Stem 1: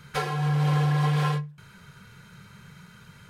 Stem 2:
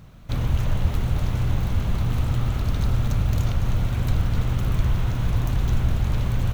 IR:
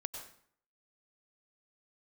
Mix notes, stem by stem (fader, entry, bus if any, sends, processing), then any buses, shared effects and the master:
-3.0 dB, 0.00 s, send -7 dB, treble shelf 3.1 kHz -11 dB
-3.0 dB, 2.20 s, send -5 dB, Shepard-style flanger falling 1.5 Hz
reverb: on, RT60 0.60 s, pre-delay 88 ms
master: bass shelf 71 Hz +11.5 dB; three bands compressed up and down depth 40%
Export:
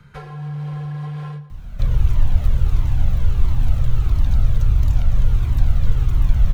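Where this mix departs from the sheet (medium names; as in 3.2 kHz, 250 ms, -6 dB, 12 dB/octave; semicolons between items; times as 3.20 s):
stem 1 -3.0 dB -> -13.5 dB; stem 2: entry 2.20 s -> 1.50 s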